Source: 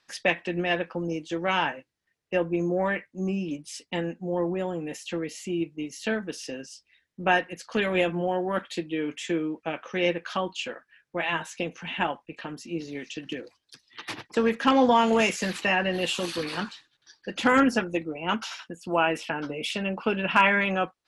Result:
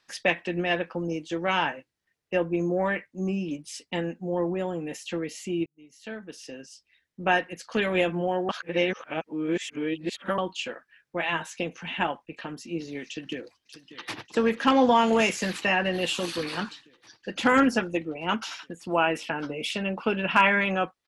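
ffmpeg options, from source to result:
-filter_complex "[0:a]asplit=2[s0][s1];[s1]afade=t=in:st=13.06:d=0.01,afade=t=out:st=14.22:d=0.01,aecho=0:1:590|1180|1770|2360|2950|3540|4130|4720|5310|5900|6490|7080:0.177828|0.142262|0.11381|0.0910479|0.0728383|0.0582707|0.0466165|0.0372932|0.0298346|0.0238677|0.0190941|0.0152753[s2];[s0][s2]amix=inputs=2:normalize=0,asplit=4[s3][s4][s5][s6];[s3]atrim=end=5.66,asetpts=PTS-STARTPTS,afade=t=out:st=5.656:d=0.004:c=hsin[s7];[s4]atrim=start=5.66:end=8.492,asetpts=PTS-STARTPTS,afade=t=in:d=2.24:c=qsin[s8];[s5]atrim=start=8.488:end=10.382,asetpts=PTS-STARTPTS,areverse[s9];[s6]atrim=start=10.378[s10];[s7][s8]concat=n=2:v=0:a=1[s11];[s11][s9]acrossfade=d=0.004:c1=hsin:c2=hsin[s12];[s12][s10]acrossfade=d=0.004:c1=hsin:c2=hsin"

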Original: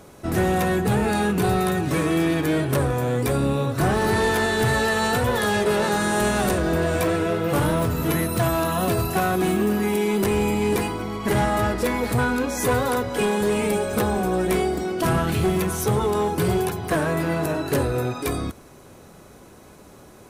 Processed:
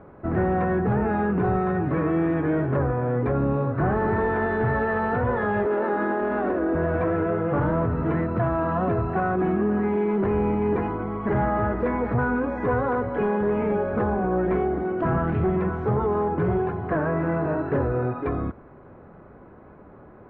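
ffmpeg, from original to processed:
-filter_complex "[0:a]asettb=1/sr,asplit=3[s0][s1][s2];[s0]atrim=end=5.664[s3];[s1]atrim=start=5.66:end=6.75,asetpts=PTS-STARTPTS,afade=t=in:d=0.004:c=qsin,afade=t=out:st=1.086:d=0.004:c=qsin,lowshelf=f=200:t=q:w=3:g=-10.5[s4];[s2]atrim=start=6.746[s5];[s3][s4]acrossfade=d=0.004:c1=hsin:c2=qsin[s6];[s6][s5]acrossfade=d=0.004:c1=qsin:c2=hsin,lowpass=f=1700:w=0.5412,lowpass=f=1700:w=1.3066,alimiter=limit=0.15:level=0:latency=1"

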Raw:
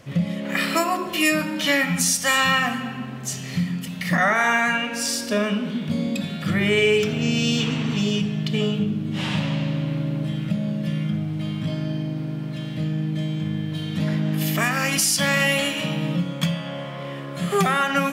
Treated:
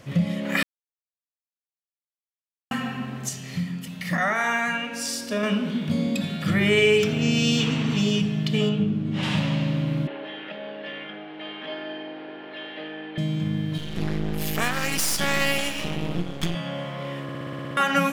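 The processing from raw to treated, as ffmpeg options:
-filter_complex "[0:a]asettb=1/sr,asplit=3[s0][s1][s2];[s0]atrim=end=8.694[s3];[s1]atrim=start=8.69:end=9.23,asetpts=PTS-STARTPTS,afade=t=in:d=0.004:c=qsin,afade=t=out:st=0.536:d=0.004:c=qsin,aemphasis=mode=reproduction:type=50kf[s4];[s2]atrim=start=9.226[s5];[s3][s4]acrossfade=d=0.004:c1=hsin:c2=qsin[s6];[s6][s5]acrossfade=d=0.004:c1=qsin:c2=hsin,asettb=1/sr,asplit=3[s7][s8][s9];[s7]atrim=end=10.074[s10];[s8]atrim=start=10.07:end=13.18,asetpts=PTS-STARTPTS,afade=t=in:d=0.004:c=qsin,afade=t=out:st=3.106:d=0.004:c=qsin,highpass=f=370:w=0.5412,highpass=f=370:w=1.3066,equalizer=f=400:t=q:w=4:g=5,equalizer=f=820:t=q:w=4:g=7,equalizer=f=1700:t=q:w=4:g=8,equalizer=f=3000:t=q:w=4:g=5,lowpass=f=3500:w=0.5412,lowpass=f=3500:w=1.3066[s11];[s9]atrim=start=13.176[s12];[s10][s11]acrossfade=d=0.004:c1=hsin:c2=qsin[s13];[s13][s12]acrossfade=d=0.004:c1=qsin:c2=hsin,asettb=1/sr,asplit=3[s14][s15][s16];[s14]atrim=end=13.784[s17];[s15]atrim=start=13.78:end=16.55,asetpts=PTS-STARTPTS,afade=t=in:d=0.004:c=qsin,afade=t=out:st=2.766:d=0.004:c=qsin,aeval=exprs='max(val(0),0)':c=same[s18];[s16]atrim=start=16.546[s19];[s17][s18]acrossfade=d=0.004:c1=hsin:c2=qsin[s20];[s20][s19]acrossfade=d=0.004:c1=qsin:c2=hsin,asplit=14[s21][s22][s23][s24][s25][s26][s27][s28][s29][s30][s31][s32][s33][s34];[s21]atrim=end=0.63,asetpts=PTS-STARTPTS,afade=t=out:st=0.626:d=0.004:c=hsin[s35];[s22]atrim=start=0.63:end=2.71,asetpts=PTS-STARTPTS,volume=0[s36];[s23]atrim=start=2.71:end=3.292,asetpts=PTS-STARTPTS,afade=t=in:d=0.004:c=hsin[s37];[s24]atrim=start=3.288:end=5.432,asetpts=PTS-STARTPTS,volume=0.596[s38];[s25]atrim=start=5.428:end=17.292[s39];[s26]atrim=start=17.228:end=17.292[s40];[s27]atrim=start=17.228:end=17.292[s41];[s28]atrim=start=17.228:end=17.292[s42];[s29]atrim=start=17.228:end=17.292[s43];[s30]atrim=start=17.228:end=17.292[s44];[s31]atrim=start=17.228:end=17.292[s45];[s32]atrim=start=17.228:end=17.292[s46];[s33]atrim=start=17.228:end=17.292[s47];[s34]atrim=start=17.768[s48];[s35][s36][s37]concat=n=3:v=0:a=1[s49];[s49][s38]acrossfade=d=0.004:c1=hsin:c2=hsin[s50];[s50][s39]acrossfade=d=0.004:c1=hsin:c2=hsin[s51];[s51][s40]acrossfade=d=0.004:c1=hsin:c2=hsin[s52];[s52][s41]acrossfade=d=0.004:c1=hsin:c2=hsin[s53];[s53][s42]acrossfade=d=0.004:c1=hsin:c2=hsin[s54];[s54][s43]acrossfade=d=0.004:c1=hsin:c2=hsin[s55];[s55][s44]acrossfade=d=0.004:c1=hsin:c2=hsin[s56];[s56][s45]acrossfade=d=0.004:c1=hsin:c2=hsin[s57];[s57][s46]acrossfade=d=0.004:c1=hsin:c2=hsin[s58];[s58][s47]acrossfade=d=0.004:c1=hsin:c2=hsin[s59];[s59][s48]acrossfade=d=0.004:c1=hsin:c2=hsin"

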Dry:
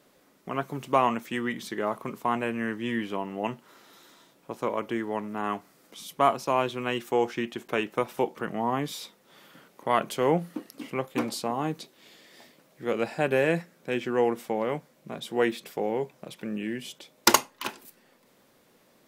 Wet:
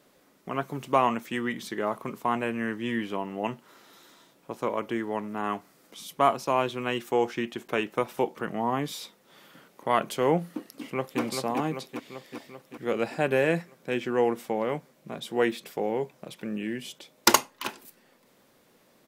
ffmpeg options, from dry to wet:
-filter_complex "[0:a]asplit=2[s0][s1];[s1]afade=t=in:st=10.6:d=0.01,afade=t=out:st=11.21:d=0.01,aecho=0:1:390|780|1170|1560|1950|2340|2730|3120|3510|3900:0.595662|0.38718|0.251667|0.163584|0.106329|0.0691141|0.0449242|0.0292007|0.0189805|0.0123373[s2];[s0][s2]amix=inputs=2:normalize=0"

